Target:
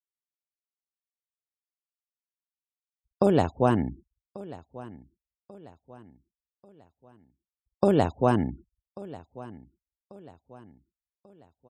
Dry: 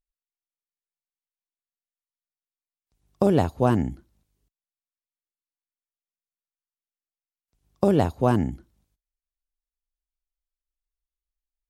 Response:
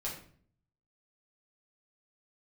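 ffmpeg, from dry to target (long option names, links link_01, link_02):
-af "afftfilt=real='re*gte(hypot(re,im),0.00562)':imag='im*gte(hypot(re,im),0.00562)':win_size=1024:overlap=0.75,lowshelf=frequency=210:gain=-5,aecho=1:1:1140|2280|3420:0.112|0.0471|0.0198"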